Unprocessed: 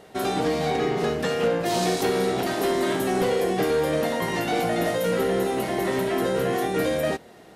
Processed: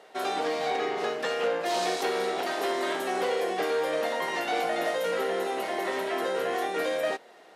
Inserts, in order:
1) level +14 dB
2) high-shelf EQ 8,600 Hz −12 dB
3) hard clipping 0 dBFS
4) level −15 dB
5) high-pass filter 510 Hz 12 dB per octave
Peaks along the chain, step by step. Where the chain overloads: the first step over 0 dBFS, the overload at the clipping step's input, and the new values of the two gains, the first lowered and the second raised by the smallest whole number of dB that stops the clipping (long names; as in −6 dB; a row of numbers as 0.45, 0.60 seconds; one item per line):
−2.5, −2.5, −2.5, −17.5, −16.5 dBFS
no step passes full scale